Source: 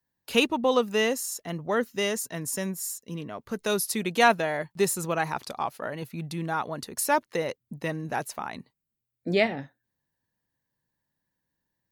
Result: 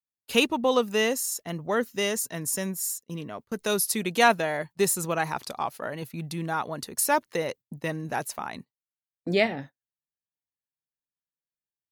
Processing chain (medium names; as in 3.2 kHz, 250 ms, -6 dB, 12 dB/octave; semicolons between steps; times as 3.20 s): gate -42 dBFS, range -23 dB; treble shelf 5.9 kHz +4.5 dB